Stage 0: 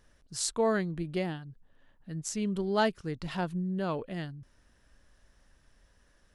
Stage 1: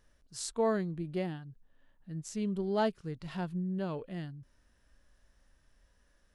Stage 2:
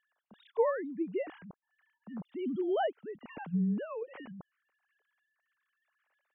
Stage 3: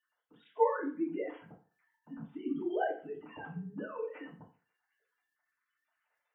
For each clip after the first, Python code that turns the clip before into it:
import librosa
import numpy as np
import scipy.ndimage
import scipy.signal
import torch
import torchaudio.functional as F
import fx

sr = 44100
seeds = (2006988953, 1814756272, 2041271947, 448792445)

y1 = fx.hpss(x, sr, part='percussive', gain_db=-8)
y1 = F.gain(torch.from_numpy(y1), -2.0).numpy()
y2 = fx.sine_speech(y1, sr)
y3 = fx.spec_quant(y2, sr, step_db=30)
y3 = fx.rev_fdn(y3, sr, rt60_s=0.41, lf_ratio=0.9, hf_ratio=0.8, size_ms=20.0, drr_db=-6.5)
y3 = F.gain(torch.from_numpy(y3), -8.5).numpy()